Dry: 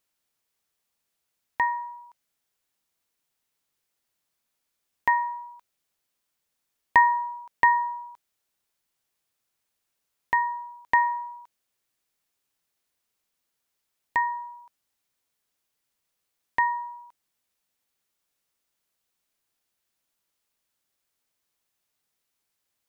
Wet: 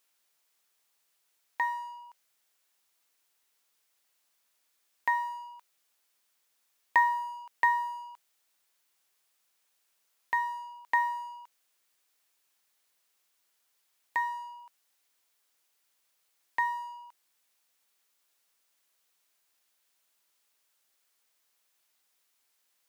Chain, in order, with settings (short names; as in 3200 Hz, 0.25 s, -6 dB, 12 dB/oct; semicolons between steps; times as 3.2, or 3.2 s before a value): G.711 law mismatch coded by mu; HPF 640 Hz 6 dB/oct; gain -5 dB